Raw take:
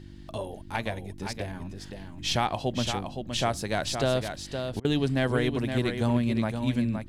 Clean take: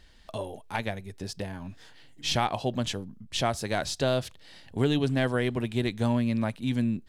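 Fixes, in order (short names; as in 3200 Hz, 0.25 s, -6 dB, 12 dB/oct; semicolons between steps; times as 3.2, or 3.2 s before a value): de-hum 49 Hz, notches 7; interpolate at 4.8, 45 ms; noise print and reduce 8 dB; inverse comb 0.517 s -7 dB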